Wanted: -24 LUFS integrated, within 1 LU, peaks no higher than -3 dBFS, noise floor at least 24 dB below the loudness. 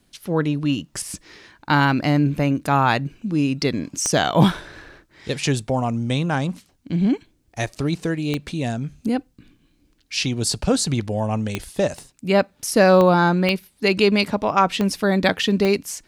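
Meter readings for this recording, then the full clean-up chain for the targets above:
clicks found 7; loudness -21.0 LUFS; peak level -2.5 dBFS; loudness target -24.0 LUFS
-> de-click; trim -3 dB

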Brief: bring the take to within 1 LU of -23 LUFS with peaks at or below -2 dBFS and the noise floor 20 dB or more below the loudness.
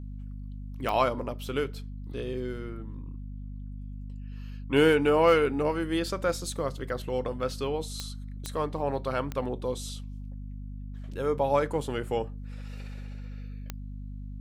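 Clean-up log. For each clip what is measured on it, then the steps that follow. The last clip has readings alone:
clicks found 5; hum 50 Hz; highest harmonic 250 Hz; hum level -36 dBFS; loudness -29.0 LUFS; peak level -10.5 dBFS; loudness target -23.0 LUFS
-> de-click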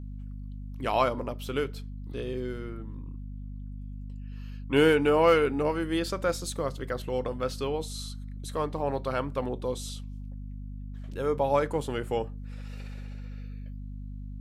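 clicks found 0; hum 50 Hz; highest harmonic 250 Hz; hum level -36 dBFS
-> de-hum 50 Hz, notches 5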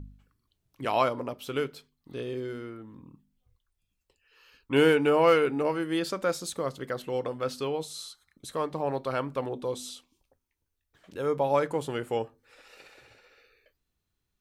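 hum not found; loudness -28.5 LUFS; peak level -10.5 dBFS; loudness target -23.0 LUFS
-> trim +5.5 dB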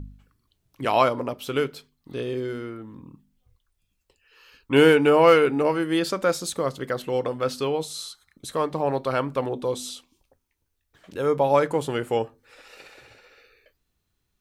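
loudness -23.5 LUFS; peak level -5.0 dBFS; noise floor -75 dBFS

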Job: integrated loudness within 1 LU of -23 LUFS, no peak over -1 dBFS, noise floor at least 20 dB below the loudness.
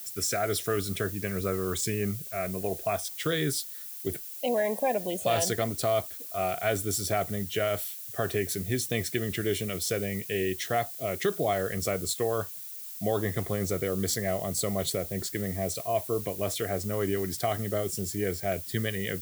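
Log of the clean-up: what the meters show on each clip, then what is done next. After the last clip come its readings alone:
noise floor -41 dBFS; noise floor target -50 dBFS; loudness -30.0 LUFS; peak level -13.0 dBFS; loudness target -23.0 LUFS
-> noise reduction 9 dB, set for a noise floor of -41 dBFS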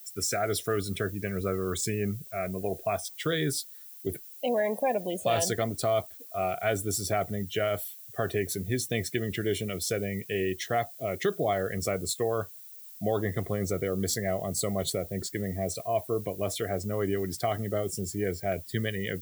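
noise floor -47 dBFS; noise floor target -51 dBFS
-> noise reduction 6 dB, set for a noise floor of -47 dBFS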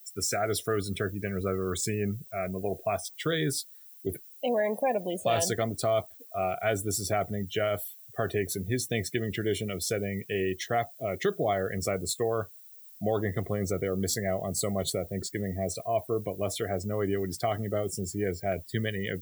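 noise floor -51 dBFS; loudness -30.5 LUFS; peak level -13.0 dBFS; loudness target -23.0 LUFS
-> trim +7.5 dB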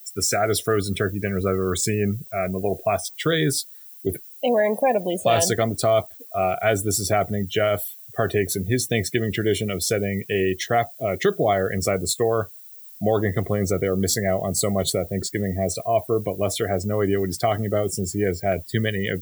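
loudness -23.0 LUFS; peak level -5.5 dBFS; noise floor -43 dBFS

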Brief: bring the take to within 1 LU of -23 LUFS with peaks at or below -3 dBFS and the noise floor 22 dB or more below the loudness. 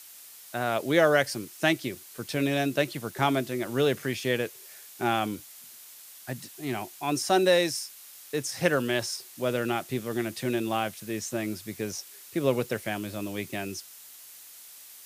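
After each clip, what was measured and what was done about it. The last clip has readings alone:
noise floor -49 dBFS; noise floor target -51 dBFS; loudness -28.5 LUFS; peak level -7.5 dBFS; loudness target -23.0 LUFS
-> noise print and reduce 6 dB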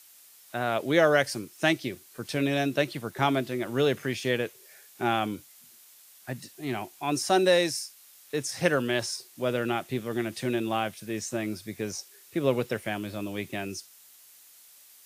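noise floor -54 dBFS; loudness -28.5 LUFS; peak level -7.5 dBFS; loudness target -23.0 LUFS
-> trim +5.5 dB; peak limiter -3 dBFS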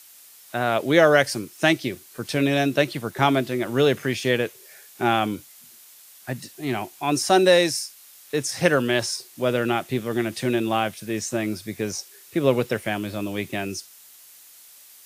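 loudness -23.0 LUFS; peak level -3.0 dBFS; noise floor -49 dBFS

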